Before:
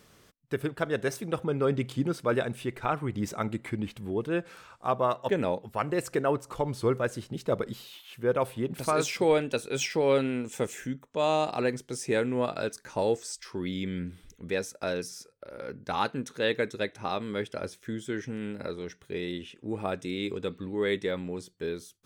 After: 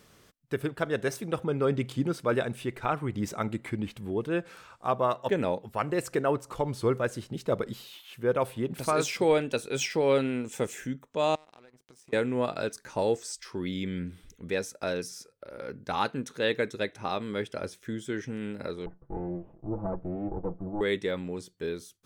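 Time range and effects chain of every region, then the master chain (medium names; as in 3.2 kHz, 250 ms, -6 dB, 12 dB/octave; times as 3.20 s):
11.35–12.13 s: compression 10:1, threshold -41 dBFS + power-law waveshaper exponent 2
18.86–20.81 s: comb filter that takes the minimum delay 6 ms + low-pass 1 kHz 24 dB/octave + bass shelf 210 Hz +7.5 dB
whole clip: none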